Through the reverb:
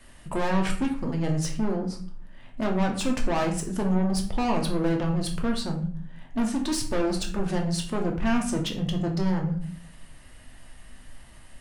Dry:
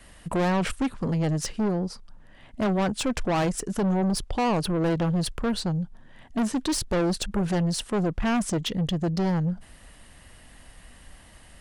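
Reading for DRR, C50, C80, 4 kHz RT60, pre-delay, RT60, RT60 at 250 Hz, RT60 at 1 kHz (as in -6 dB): 1.0 dB, 8.5 dB, 12.5 dB, 0.35 s, 3 ms, 0.50 s, 0.75 s, 0.45 s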